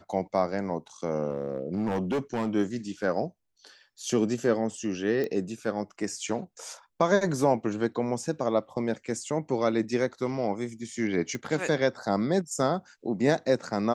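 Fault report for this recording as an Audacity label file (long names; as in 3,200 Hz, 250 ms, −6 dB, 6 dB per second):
1.290000	2.490000	clipping −23.5 dBFS
5.240000	5.240000	click −19 dBFS
11.350000	11.350000	click −20 dBFS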